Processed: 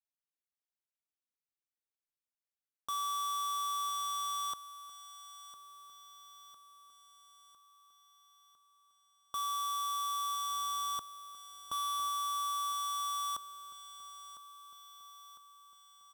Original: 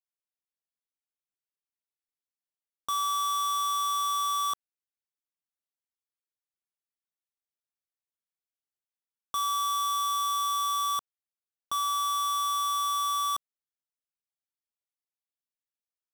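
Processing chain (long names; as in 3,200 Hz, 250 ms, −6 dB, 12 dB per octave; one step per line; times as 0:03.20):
0:10.50–0:12.09: low-shelf EQ 420 Hz +6 dB
repeating echo 1,004 ms, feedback 57%, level −14 dB
level −7 dB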